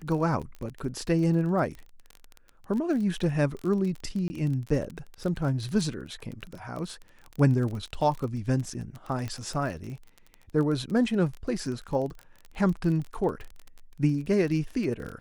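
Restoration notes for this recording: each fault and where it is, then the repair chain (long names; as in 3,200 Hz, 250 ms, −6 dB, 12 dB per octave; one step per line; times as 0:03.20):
surface crackle 29 per second −33 dBFS
0:04.28–0:04.30: drop-out 20 ms
0:09.28: click −21 dBFS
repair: click removal
repair the gap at 0:04.28, 20 ms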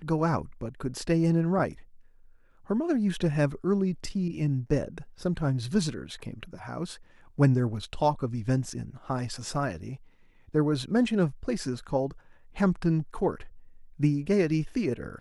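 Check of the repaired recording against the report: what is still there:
none of them is left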